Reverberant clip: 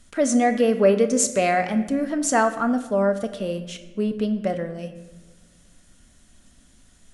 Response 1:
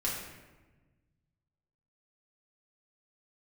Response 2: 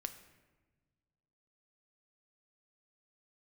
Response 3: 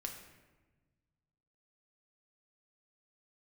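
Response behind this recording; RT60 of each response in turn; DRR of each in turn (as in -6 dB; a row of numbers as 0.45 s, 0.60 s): 2; 1.2 s, 1.3 s, 1.3 s; -6.5 dB, 8.0 dB, 1.5 dB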